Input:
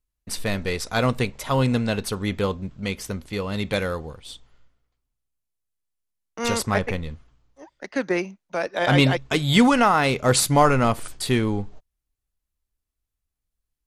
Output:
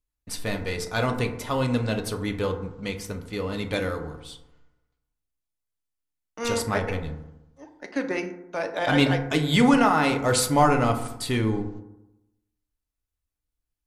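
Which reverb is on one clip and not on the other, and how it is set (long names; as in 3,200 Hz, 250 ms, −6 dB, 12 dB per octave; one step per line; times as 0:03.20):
feedback delay network reverb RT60 0.9 s, low-frequency decay 1.1×, high-frequency decay 0.35×, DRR 4.5 dB
level −4 dB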